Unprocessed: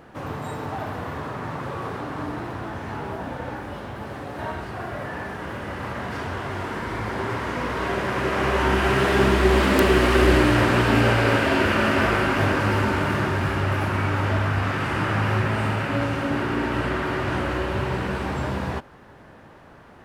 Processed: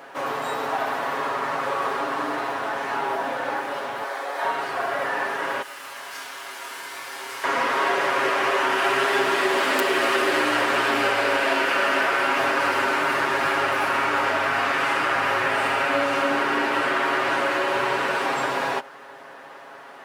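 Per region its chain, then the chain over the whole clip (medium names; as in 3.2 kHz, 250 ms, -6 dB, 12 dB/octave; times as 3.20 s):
4.04–4.45 s: high-pass 480 Hz + band-stop 2.8 kHz, Q 10
5.62–7.44 s: pre-emphasis filter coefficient 0.9 + band-stop 1.9 kHz, Q 23 + doubling 26 ms -4 dB
whole clip: high-pass 530 Hz 12 dB/octave; compression, threshold -27 dBFS; comb 7.3 ms; trim +7 dB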